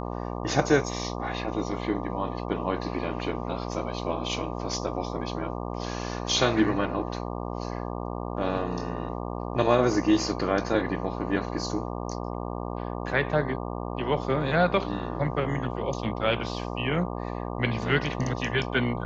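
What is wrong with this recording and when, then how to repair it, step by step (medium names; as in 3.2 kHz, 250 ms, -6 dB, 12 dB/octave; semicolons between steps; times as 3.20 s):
buzz 60 Hz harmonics 20 -33 dBFS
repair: de-hum 60 Hz, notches 20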